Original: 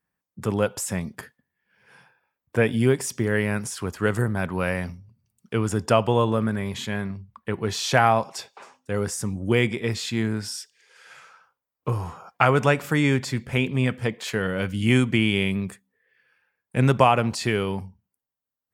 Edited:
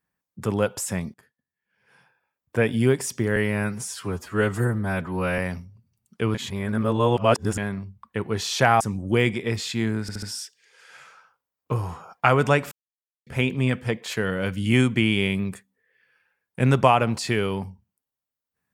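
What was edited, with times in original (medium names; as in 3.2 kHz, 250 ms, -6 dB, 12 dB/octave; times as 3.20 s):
1.14–2.79 s: fade in, from -21.5 dB
3.36–4.71 s: stretch 1.5×
5.67–6.90 s: reverse
8.13–9.18 s: delete
10.39 s: stutter 0.07 s, 4 plays
12.88–13.43 s: mute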